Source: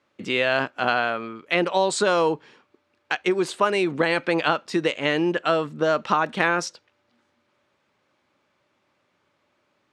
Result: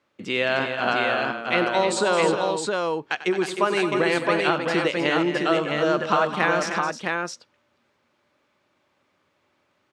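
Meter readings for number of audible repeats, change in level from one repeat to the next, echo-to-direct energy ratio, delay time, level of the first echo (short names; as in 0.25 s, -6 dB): 4, no steady repeat, -1.5 dB, 94 ms, -14.0 dB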